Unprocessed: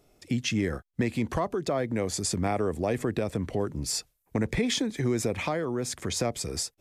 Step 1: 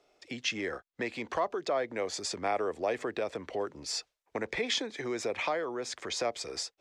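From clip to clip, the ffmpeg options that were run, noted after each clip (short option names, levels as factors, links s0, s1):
-filter_complex "[0:a]acrossover=split=380 6500:gain=0.0891 1 0.0631[s0][s1][s2];[s0][s1][s2]amix=inputs=3:normalize=0"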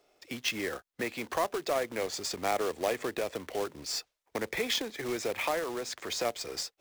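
-af "acrusher=bits=2:mode=log:mix=0:aa=0.000001"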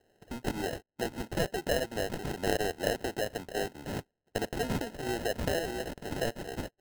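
-af "acrusher=samples=38:mix=1:aa=0.000001"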